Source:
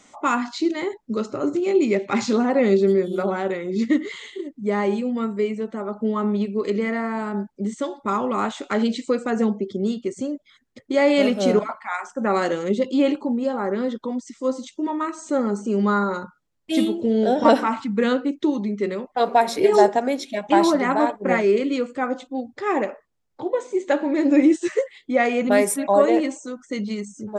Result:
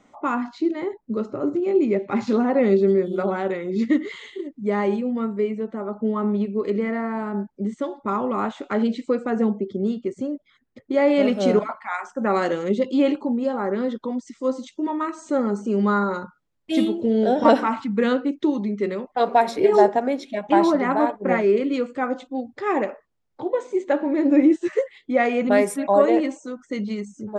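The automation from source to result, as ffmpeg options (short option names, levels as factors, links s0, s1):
-af "asetnsamples=n=441:p=0,asendcmd='2.27 lowpass f 2000;3.19 lowpass f 3400;4.96 lowpass f 1600;11.28 lowpass f 4100;19.51 lowpass f 2100;21.74 lowpass f 4100;23.84 lowpass f 1600;24.73 lowpass f 3200',lowpass=f=1000:p=1"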